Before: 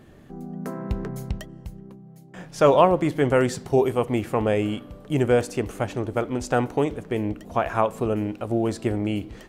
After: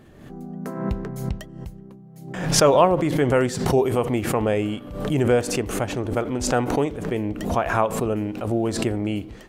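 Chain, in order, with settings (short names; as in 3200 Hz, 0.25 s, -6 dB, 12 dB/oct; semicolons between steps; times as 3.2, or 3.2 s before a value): backwards sustainer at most 63 dB/s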